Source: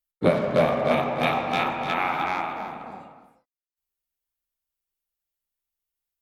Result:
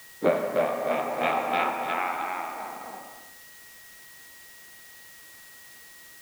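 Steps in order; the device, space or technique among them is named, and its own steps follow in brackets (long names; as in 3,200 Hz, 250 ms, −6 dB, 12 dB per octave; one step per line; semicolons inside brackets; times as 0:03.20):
shortwave radio (band-pass filter 300–2,700 Hz; amplitude tremolo 0.64 Hz, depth 41%; steady tone 1,900 Hz −51 dBFS; white noise bed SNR 19 dB)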